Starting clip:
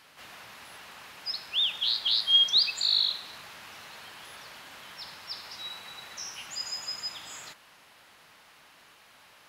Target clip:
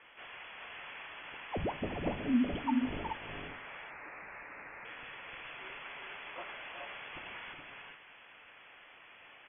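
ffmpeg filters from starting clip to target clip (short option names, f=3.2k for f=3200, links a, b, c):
-filter_complex "[0:a]asettb=1/sr,asplit=3[a][b][c];[a]atrim=end=3.474[d];[b]atrim=start=3.47:end=4.85,asetpts=PTS-STARTPTS,afade=t=in:d=0.004:c=qsin,afade=t=out:st=1.376:d=0.004:c=qsin,highpass=f=1.1k:w=0.5412,highpass=f=1.1k:w=1.3066[e];[c]atrim=start=4.846[f];[d][e]acrossfade=d=0.004:c1=hsin:c2=qsin[g];[g][f]acrossfade=d=0.004:c1=qsin:c2=hsin,lowpass=f=3k:t=q:w=0.5098,lowpass=f=3k:t=q:w=0.6013,lowpass=f=3k:t=q:w=0.9,lowpass=f=3k:t=q:w=2.563,afreqshift=-3500,aecho=1:1:369|420|427:0.422|0.398|0.376"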